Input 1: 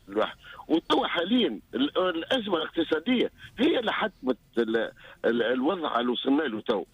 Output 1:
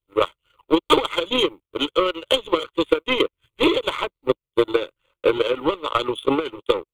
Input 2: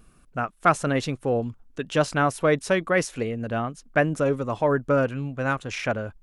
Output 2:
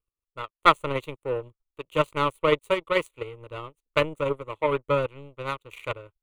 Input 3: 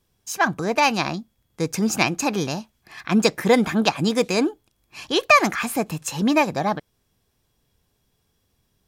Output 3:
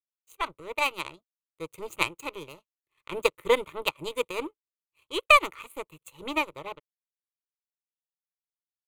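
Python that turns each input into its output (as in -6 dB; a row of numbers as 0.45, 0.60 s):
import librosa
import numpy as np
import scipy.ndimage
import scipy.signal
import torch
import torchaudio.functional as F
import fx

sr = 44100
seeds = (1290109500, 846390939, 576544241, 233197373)

y = fx.power_curve(x, sr, exponent=2.0)
y = fx.fixed_phaser(y, sr, hz=1100.0, stages=8)
y = librosa.util.normalize(y) * 10.0 ** (-3 / 20.0)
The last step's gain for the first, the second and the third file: +13.0, +10.0, +4.0 dB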